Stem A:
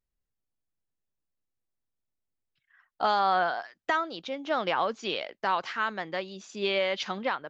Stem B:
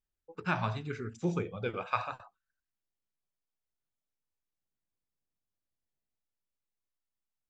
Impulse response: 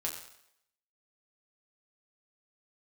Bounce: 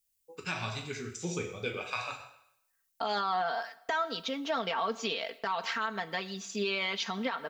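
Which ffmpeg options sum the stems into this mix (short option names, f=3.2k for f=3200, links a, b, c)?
-filter_complex "[0:a]agate=range=-24dB:threshold=-50dB:ratio=16:detection=peak,aecho=1:1:4.4:0.84,volume=-2dB,asplit=3[a][b][c];[b]volume=-13.5dB[d];[1:a]equalizer=f=440:t=o:w=0.77:g=3.5,aexciter=amount=2.3:drive=7.5:freq=2k,volume=-1dB,asplit=2[e][f];[f]volume=-6.5dB[g];[c]apad=whole_len=330727[h];[e][h]sidechaingate=range=-12dB:threshold=-47dB:ratio=16:detection=peak[i];[2:a]atrim=start_sample=2205[j];[d][g]amix=inputs=2:normalize=0[k];[k][j]afir=irnorm=-1:irlink=0[l];[a][i][l]amix=inputs=3:normalize=0,highshelf=f=5.9k:g=9.5,alimiter=limit=-22dB:level=0:latency=1:release=133"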